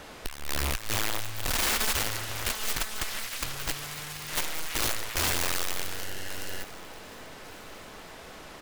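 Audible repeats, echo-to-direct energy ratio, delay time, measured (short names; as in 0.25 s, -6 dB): 2, -20.0 dB, 1.144 s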